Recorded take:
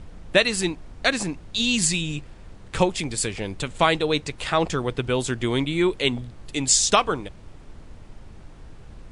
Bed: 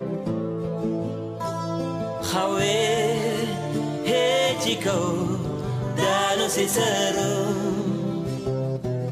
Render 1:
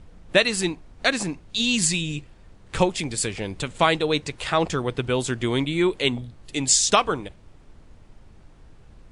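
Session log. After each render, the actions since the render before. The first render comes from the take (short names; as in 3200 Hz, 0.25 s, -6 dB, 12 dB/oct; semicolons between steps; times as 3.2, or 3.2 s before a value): noise print and reduce 6 dB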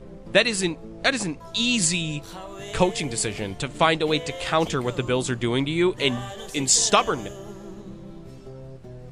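add bed -15 dB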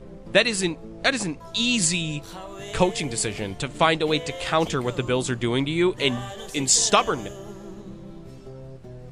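nothing audible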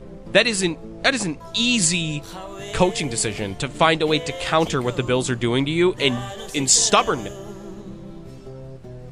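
gain +3 dB; limiter -3 dBFS, peak gain reduction 2 dB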